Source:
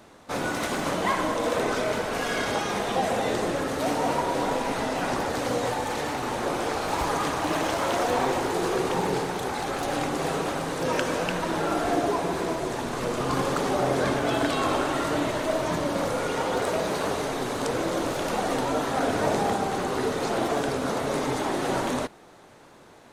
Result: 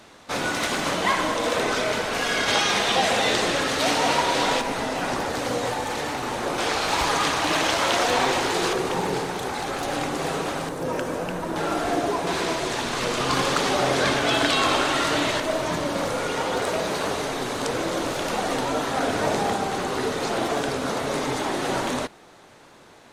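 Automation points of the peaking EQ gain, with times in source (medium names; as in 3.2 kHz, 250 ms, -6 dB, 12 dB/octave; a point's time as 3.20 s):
peaking EQ 3.7 kHz 2.8 oct
+7.5 dB
from 2.48 s +13.5 dB
from 4.61 s +3.5 dB
from 6.58 s +10.5 dB
from 8.73 s +3 dB
from 10.69 s -6.5 dB
from 11.56 s +3 dB
from 12.27 s +11 dB
from 15.40 s +4.5 dB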